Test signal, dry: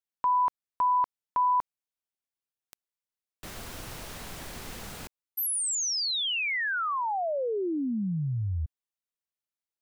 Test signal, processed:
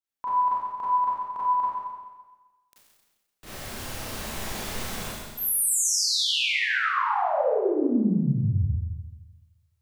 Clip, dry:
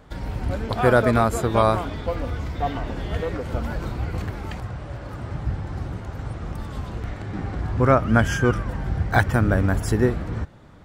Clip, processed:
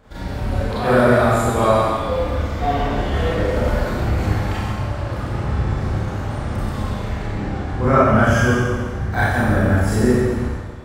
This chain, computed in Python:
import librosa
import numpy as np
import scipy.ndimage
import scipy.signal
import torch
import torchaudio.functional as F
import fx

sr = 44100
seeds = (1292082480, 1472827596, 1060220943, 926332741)

p1 = fx.rider(x, sr, range_db=5, speed_s=2.0)
p2 = p1 + fx.echo_single(p1, sr, ms=136, db=-9.0, dry=0)
p3 = fx.rev_schroeder(p2, sr, rt60_s=1.3, comb_ms=29, drr_db=-9.5)
y = F.gain(torch.from_numpy(p3), -6.0).numpy()